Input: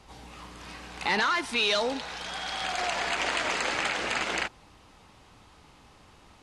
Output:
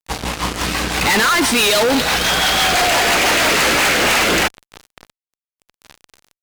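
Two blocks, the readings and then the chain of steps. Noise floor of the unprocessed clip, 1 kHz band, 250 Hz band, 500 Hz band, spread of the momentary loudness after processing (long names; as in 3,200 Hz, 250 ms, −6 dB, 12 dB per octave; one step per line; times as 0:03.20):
−56 dBFS, +13.0 dB, +17.5 dB, +14.5 dB, 8 LU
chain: rotating-speaker cabinet horn 6 Hz, later 0.85 Hz, at 0:03.51
fuzz pedal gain 47 dB, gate −48 dBFS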